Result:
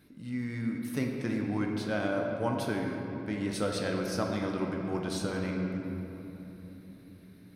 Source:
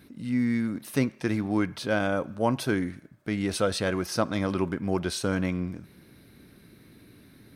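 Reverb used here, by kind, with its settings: simulated room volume 220 m³, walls hard, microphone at 0.46 m; trim -7.5 dB

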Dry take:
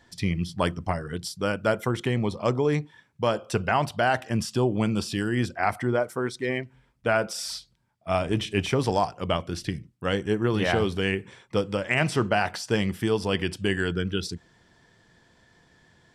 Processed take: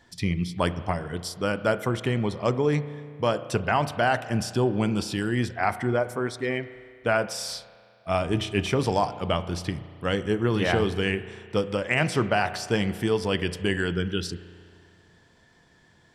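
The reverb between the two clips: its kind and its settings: spring tank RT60 2.2 s, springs 34 ms, chirp 35 ms, DRR 13.5 dB

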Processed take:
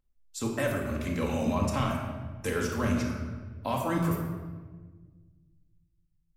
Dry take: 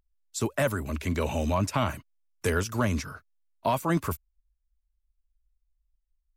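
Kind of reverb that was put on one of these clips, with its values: simulated room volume 1300 m³, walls mixed, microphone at 2.1 m; trim -6 dB

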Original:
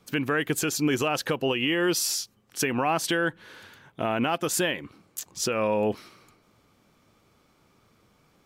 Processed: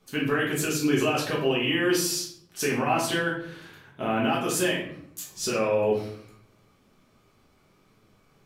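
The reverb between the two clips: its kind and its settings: simulated room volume 88 m³, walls mixed, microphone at 1.4 m; trim -6 dB

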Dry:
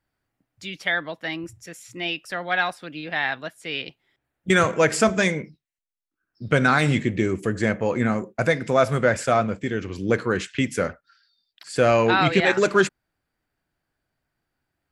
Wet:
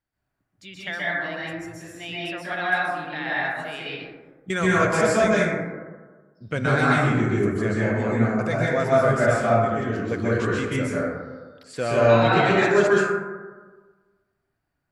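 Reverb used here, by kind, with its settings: plate-style reverb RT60 1.4 s, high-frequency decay 0.3×, pre-delay 115 ms, DRR -7.5 dB; trim -8.5 dB

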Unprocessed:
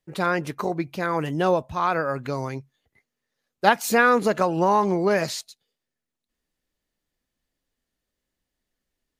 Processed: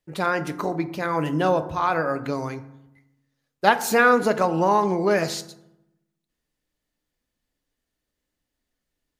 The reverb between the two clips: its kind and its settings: FDN reverb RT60 0.86 s, low-frequency decay 1.4×, high-frequency decay 0.5×, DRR 10 dB

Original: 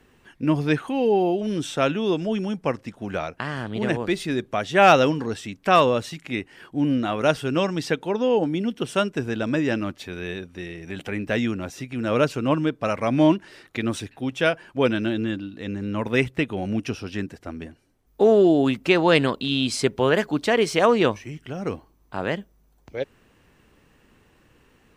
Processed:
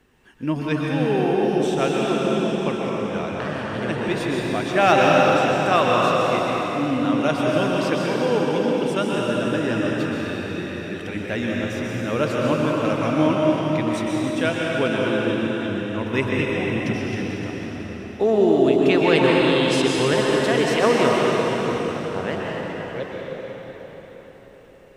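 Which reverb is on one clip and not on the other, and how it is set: plate-style reverb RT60 5 s, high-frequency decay 0.85×, pre-delay 110 ms, DRR -4 dB; trim -3 dB

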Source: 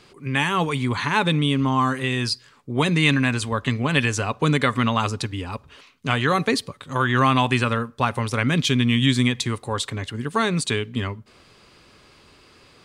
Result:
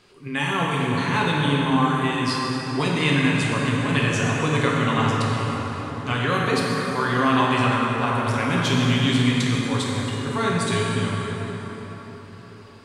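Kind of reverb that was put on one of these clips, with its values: plate-style reverb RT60 4.9 s, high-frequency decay 0.55×, DRR -4.5 dB; trim -5.5 dB

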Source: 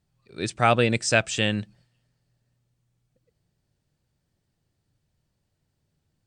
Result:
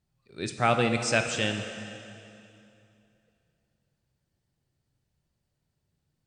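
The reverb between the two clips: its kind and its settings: plate-style reverb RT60 2.7 s, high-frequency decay 0.9×, DRR 5.5 dB; trim -4.5 dB

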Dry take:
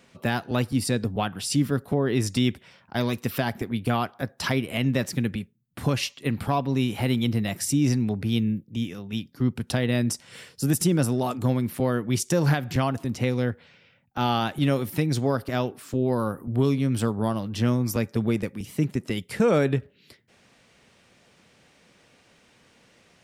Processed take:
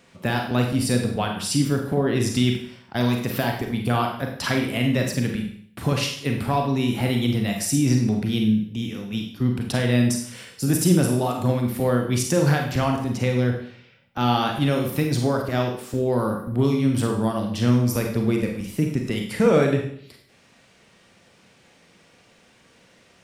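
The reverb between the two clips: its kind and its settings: Schroeder reverb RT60 0.59 s, combs from 33 ms, DRR 2 dB; trim +1 dB

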